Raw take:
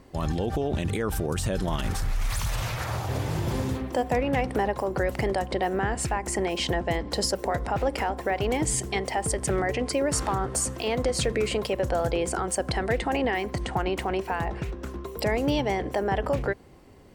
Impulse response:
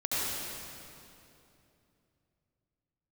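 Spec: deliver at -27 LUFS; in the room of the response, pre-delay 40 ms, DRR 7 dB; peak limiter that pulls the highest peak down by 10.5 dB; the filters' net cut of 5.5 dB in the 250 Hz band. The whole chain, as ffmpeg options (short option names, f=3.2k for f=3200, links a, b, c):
-filter_complex "[0:a]equalizer=f=250:t=o:g=-8,alimiter=level_in=1dB:limit=-24dB:level=0:latency=1,volume=-1dB,asplit=2[a][b];[1:a]atrim=start_sample=2205,adelay=40[c];[b][c]afir=irnorm=-1:irlink=0,volume=-16dB[d];[a][d]amix=inputs=2:normalize=0,volume=6.5dB"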